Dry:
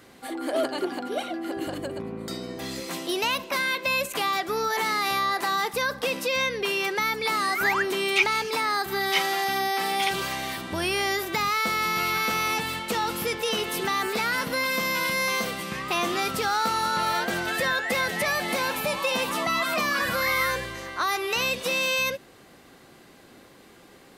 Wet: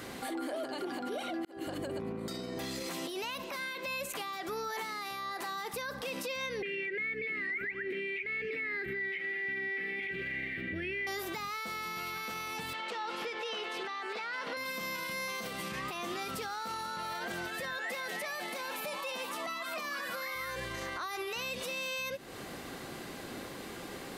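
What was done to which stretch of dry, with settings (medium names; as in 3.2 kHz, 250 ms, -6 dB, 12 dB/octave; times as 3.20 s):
1.45–2.54 s: fade in
6.62–11.07 s: FFT filter 470 Hz 0 dB, 1 kHz -30 dB, 2 kHz +11 dB, 3.4 kHz -11 dB, 6 kHz -27 dB
12.73–14.57 s: band-pass 440–4000 Hz
17.78–20.35 s: high-pass 270 Hz
whole clip: compression 6:1, threshold -38 dBFS; peak limiter -37.5 dBFS; trim +8 dB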